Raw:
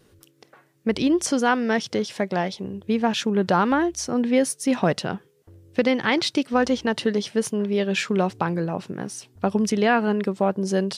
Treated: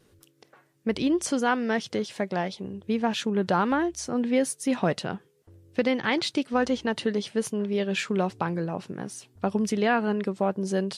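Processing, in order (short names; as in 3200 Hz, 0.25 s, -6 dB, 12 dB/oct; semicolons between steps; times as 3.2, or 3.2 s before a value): dynamic EQ 5500 Hz, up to -5 dB, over -51 dBFS, Q 6.5; gain -3.5 dB; MP3 56 kbps 32000 Hz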